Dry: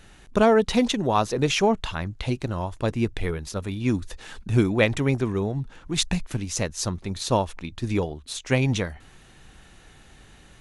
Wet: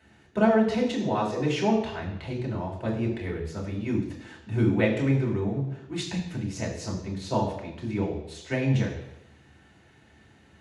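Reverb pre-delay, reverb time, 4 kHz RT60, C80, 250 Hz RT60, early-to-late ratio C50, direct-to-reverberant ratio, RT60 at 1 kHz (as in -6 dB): 3 ms, 0.90 s, 0.90 s, 8.5 dB, 0.85 s, 6.0 dB, -3.0 dB, 0.90 s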